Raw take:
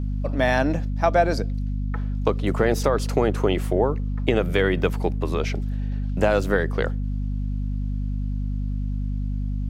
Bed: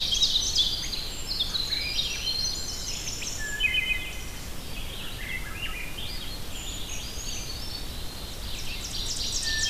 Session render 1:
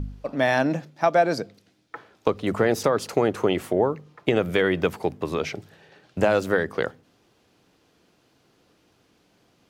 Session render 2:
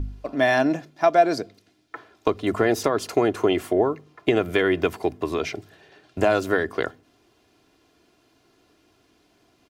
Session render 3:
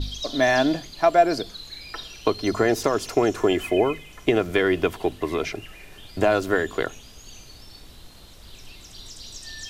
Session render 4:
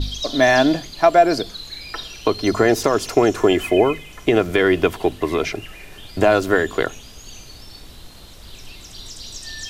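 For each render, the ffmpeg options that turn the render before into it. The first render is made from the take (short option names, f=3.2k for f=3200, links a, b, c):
-af "bandreject=f=50:t=h:w=4,bandreject=f=100:t=h:w=4,bandreject=f=150:t=h:w=4,bandreject=f=200:t=h:w=4,bandreject=f=250:t=h:w=4"
-af "aecho=1:1:2.9:0.5"
-filter_complex "[1:a]volume=-10.5dB[a];[0:a][a]amix=inputs=2:normalize=0"
-af "volume=5dB,alimiter=limit=-3dB:level=0:latency=1"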